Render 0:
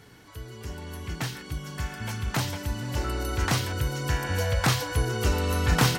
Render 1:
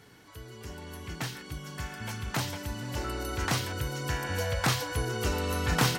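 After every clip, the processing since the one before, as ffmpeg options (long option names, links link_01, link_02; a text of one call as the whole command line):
ffmpeg -i in.wav -af "lowshelf=frequency=92:gain=-7,volume=-2.5dB" out.wav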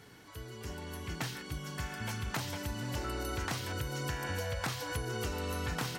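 ffmpeg -i in.wav -af "acompressor=threshold=-32dB:ratio=12" out.wav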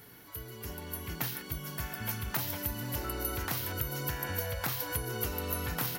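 ffmpeg -i in.wav -af "aexciter=amount=8.7:drive=4.1:freq=11000" out.wav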